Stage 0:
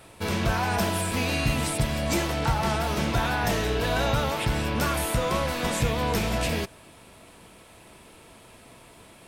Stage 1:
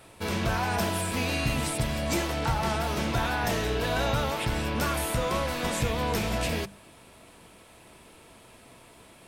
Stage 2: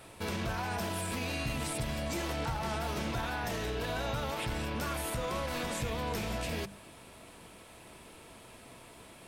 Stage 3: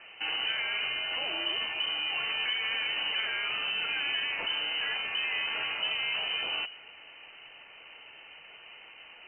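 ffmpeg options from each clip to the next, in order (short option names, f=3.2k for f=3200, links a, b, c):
-af "bandreject=f=50:t=h:w=6,bandreject=f=100:t=h:w=6,bandreject=f=150:t=h:w=6,bandreject=f=200:t=h:w=6,volume=-2dB"
-af "alimiter=level_in=2.5dB:limit=-24dB:level=0:latency=1:release=88,volume=-2.5dB"
-af "lowpass=f=2.6k:t=q:w=0.5098,lowpass=f=2.6k:t=q:w=0.6013,lowpass=f=2.6k:t=q:w=0.9,lowpass=f=2.6k:t=q:w=2.563,afreqshift=-3100,volume=3dB"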